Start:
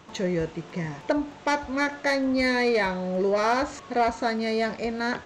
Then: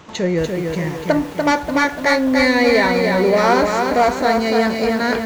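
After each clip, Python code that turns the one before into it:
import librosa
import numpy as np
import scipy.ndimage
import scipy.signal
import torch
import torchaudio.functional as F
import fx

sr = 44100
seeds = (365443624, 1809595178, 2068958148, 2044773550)

y = fx.echo_crushed(x, sr, ms=292, feedback_pct=55, bits=8, wet_db=-4.0)
y = F.gain(torch.from_numpy(y), 7.5).numpy()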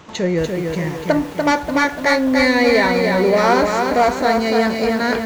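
y = x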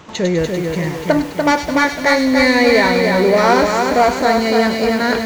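y = fx.echo_wet_highpass(x, sr, ms=100, feedback_pct=48, hz=2800.0, wet_db=-4.0)
y = F.gain(torch.from_numpy(y), 2.0).numpy()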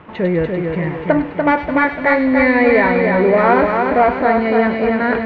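y = scipy.signal.sosfilt(scipy.signal.butter(4, 2500.0, 'lowpass', fs=sr, output='sos'), x)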